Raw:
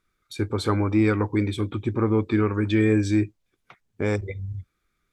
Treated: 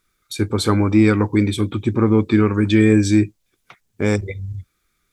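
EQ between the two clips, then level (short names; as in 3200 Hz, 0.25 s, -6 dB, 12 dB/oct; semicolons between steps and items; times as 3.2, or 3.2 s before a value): high shelf 3900 Hz +10 dB; dynamic EQ 190 Hz, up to +6 dB, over -33 dBFS, Q 1.1; +3.5 dB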